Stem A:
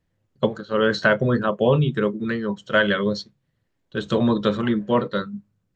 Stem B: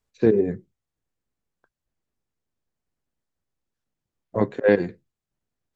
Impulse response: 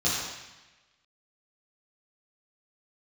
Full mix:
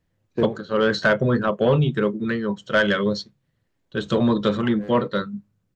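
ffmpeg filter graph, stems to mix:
-filter_complex "[0:a]acontrast=81,volume=-6dB,asplit=2[a][b];[1:a]agate=range=-33dB:threshold=-44dB:ratio=3:detection=peak,aeval=exprs='clip(val(0),-1,0.224)':c=same,adelay=150,volume=-3.5dB[c];[b]apad=whole_len=260560[d];[c][d]sidechaincompress=threshold=-38dB:ratio=10:attack=16:release=582[e];[a][e]amix=inputs=2:normalize=0"

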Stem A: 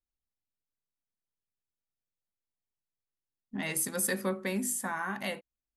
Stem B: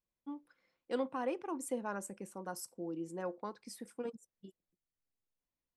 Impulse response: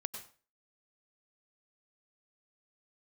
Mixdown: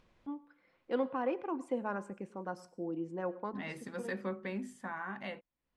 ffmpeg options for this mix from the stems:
-filter_complex "[0:a]volume=-6dB,asplit=2[a][b];[1:a]volume=0.5dB,asplit=2[c][d];[d]volume=-9.5dB[e];[b]apad=whole_len=254333[f];[c][f]sidechaincompress=threshold=-41dB:ratio=8:attack=16:release=471[g];[2:a]atrim=start_sample=2205[h];[e][h]afir=irnorm=-1:irlink=0[i];[a][g][i]amix=inputs=3:normalize=0,lowpass=2.8k,acompressor=mode=upward:threshold=-49dB:ratio=2.5"

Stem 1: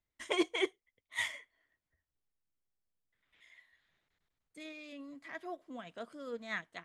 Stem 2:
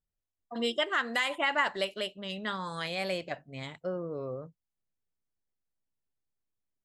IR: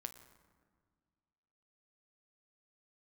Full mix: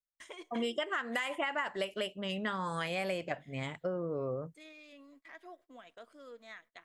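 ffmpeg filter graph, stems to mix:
-filter_complex "[0:a]equalizer=f=160:w=1.3:g=-14,acompressor=threshold=-42dB:ratio=6,volume=-5.5dB,asplit=2[a][b];[b]volume=-12dB[c];[1:a]equalizer=f=4k:t=o:w=0.37:g=-12,volume=3dB[d];[2:a]atrim=start_sample=2205[e];[c][e]afir=irnorm=-1:irlink=0[f];[a][d][f]amix=inputs=3:normalize=0,agate=range=-24dB:threshold=-60dB:ratio=16:detection=peak,acompressor=threshold=-31dB:ratio=6"

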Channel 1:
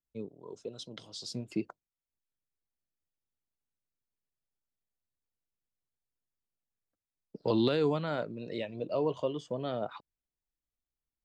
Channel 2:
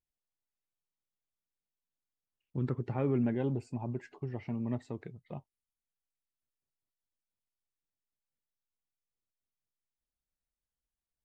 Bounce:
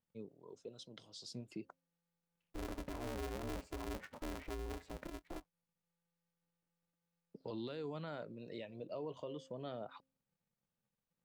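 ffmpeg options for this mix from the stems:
-filter_complex "[0:a]bandreject=f=265.4:t=h:w=4,bandreject=f=530.8:t=h:w=4,volume=-9dB[a];[1:a]highshelf=f=3.1k:g=-10,aeval=exprs='val(0)*sgn(sin(2*PI*170*n/s))':c=same,volume=2.5dB[b];[a][b]amix=inputs=2:normalize=0,alimiter=level_in=11.5dB:limit=-24dB:level=0:latency=1:release=75,volume=-11.5dB"

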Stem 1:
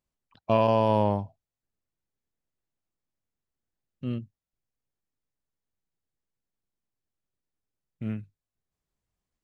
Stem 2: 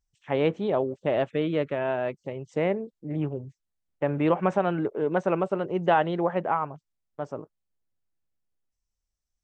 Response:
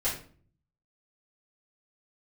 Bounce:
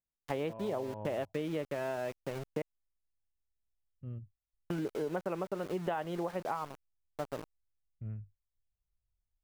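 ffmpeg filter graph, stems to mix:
-filter_complex "[0:a]acompressor=threshold=-26dB:ratio=2,lowpass=1.3k,asubboost=boost=11:cutoff=74,volume=-13dB[a];[1:a]aeval=exprs='val(0)*gte(abs(val(0)),0.015)':c=same,volume=-2.5dB,asplit=3[b][c][d];[b]atrim=end=2.62,asetpts=PTS-STARTPTS,afade=t=out:st=2.616:d=0.004:c=hsin[e];[c]atrim=start=2.62:end=4.7,asetpts=PTS-STARTPTS,volume=0[f];[d]atrim=start=4.7,asetpts=PTS-STARTPTS,afade=t=in:d=0.004:c=hsin[g];[e][f][g]concat=n=3:v=0:a=1[h];[a][h]amix=inputs=2:normalize=0,acompressor=threshold=-32dB:ratio=6"

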